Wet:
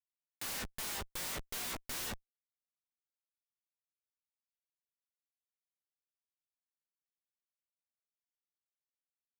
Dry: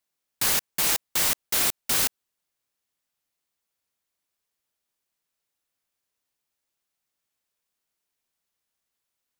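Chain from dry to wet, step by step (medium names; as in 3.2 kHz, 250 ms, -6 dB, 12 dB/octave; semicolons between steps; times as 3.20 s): local Wiener filter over 9 samples; treble shelf 8.1 kHz -2.5 dB; feedback comb 61 Hz, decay 0.2 s, harmonics all, mix 70%; flange 0.43 Hz, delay 1.9 ms, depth 3.8 ms, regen +58%; Schmitt trigger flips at -49 dBFS; trim +3 dB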